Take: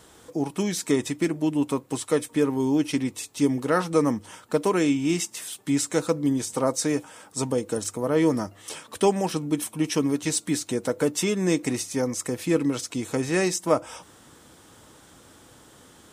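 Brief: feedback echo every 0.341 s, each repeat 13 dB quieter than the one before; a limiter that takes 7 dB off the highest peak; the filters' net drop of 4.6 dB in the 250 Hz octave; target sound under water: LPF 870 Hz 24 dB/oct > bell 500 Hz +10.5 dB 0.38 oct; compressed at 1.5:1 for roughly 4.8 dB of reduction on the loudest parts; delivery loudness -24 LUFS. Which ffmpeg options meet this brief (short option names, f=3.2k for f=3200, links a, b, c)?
-af "equalizer=f=250:t=o:g=-7,acompressor=threshold=-30dB:ratio=1.5,alimiter=limit=-20.5dB:level=0:latency=1,lowpass=f=870:w=0.5412,lowpass=f=870:w=1.3066,equalizer=f=500:t=o:w=0.38:g=10.5,aecho=1:1:341|682|1023:0.224|0.0493|0.0108,volume=6dB"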